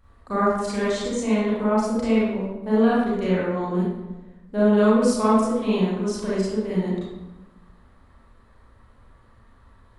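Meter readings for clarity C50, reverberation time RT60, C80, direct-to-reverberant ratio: -3.5 dB, 1.1 s, 1.0 dB, -9.5 dB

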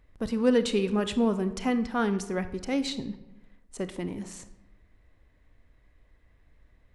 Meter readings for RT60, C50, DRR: 1.0 s, 13.0 dB, 11.0 dB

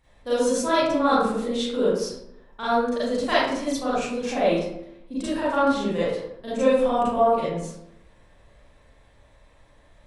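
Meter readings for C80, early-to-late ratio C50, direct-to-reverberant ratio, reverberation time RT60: 2.0 dB, -3.0 dB, -11.5 dB, 0.80 s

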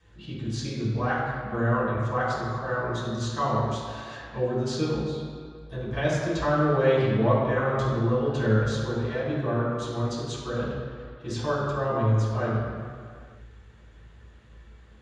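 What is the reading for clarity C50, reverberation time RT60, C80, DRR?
-1.0 dB, not exponential, 1.0 dB, -11.0 dB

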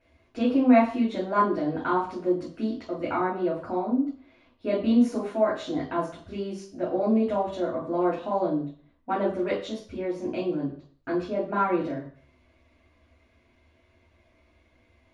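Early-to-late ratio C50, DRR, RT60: 6.0 dB, -7.5 dB, 0.50 s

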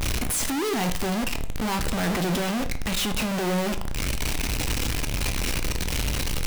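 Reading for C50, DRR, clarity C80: 13.5 dB, 8.5 dB, 17.0 dB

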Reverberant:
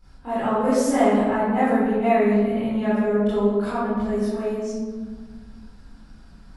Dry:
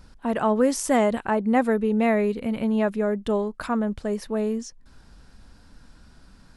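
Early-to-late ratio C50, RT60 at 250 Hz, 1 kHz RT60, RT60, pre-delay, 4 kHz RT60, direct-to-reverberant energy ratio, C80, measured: -3.5 dB, 2.6 s, 1.5 s, 1.6 s, 21 ms, 0.80 s, -14.0 dB, 0.0 dB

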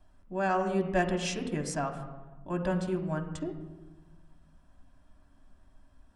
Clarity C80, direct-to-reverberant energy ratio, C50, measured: 10.0 dB, 2.0 dB, 8.5 dB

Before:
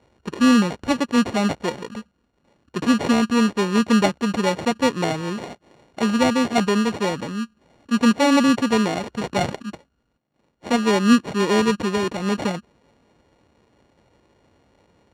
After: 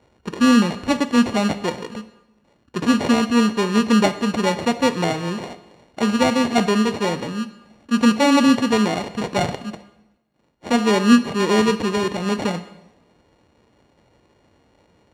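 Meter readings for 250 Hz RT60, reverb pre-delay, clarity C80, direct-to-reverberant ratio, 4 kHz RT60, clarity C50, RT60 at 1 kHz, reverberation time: 0.95 s, 4 ms, 16.0 dB, 10.5 dB, 0.85 s, 13.5 dB, 0.95 s, 0.95 s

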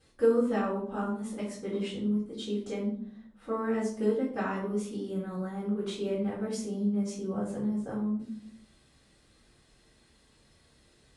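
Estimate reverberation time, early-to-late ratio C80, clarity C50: 0.60 s, 8.5 dB, 4.5 dB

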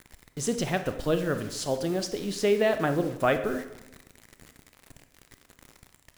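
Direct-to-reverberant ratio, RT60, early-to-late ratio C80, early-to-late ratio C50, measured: 8.0 dB, 0.90 s, 12.5 dB, 10.0 dB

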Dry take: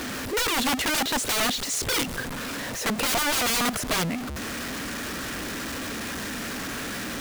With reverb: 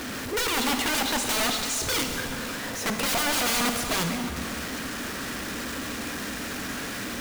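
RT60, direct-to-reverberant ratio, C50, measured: 2.7 s, 4.0 dB, 4.5 dB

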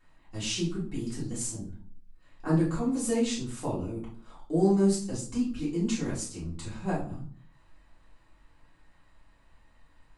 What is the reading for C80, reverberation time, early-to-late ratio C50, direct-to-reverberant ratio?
12.0 dB, 0.50 s, 6.5 dB, -9.0 dB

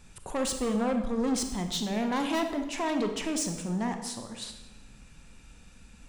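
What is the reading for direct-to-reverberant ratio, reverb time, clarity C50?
5.5 dB, 1.0 s, 7.0 dB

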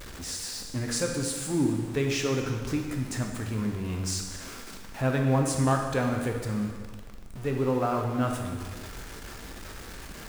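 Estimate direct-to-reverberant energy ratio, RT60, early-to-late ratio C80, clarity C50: 2.0 dB, 1.6 s, 6.0 dB, 4.0 dB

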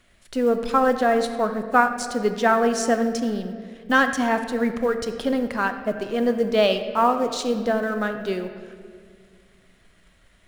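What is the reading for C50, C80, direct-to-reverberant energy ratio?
8.5 dB, 10.0 dB, 7.5 dB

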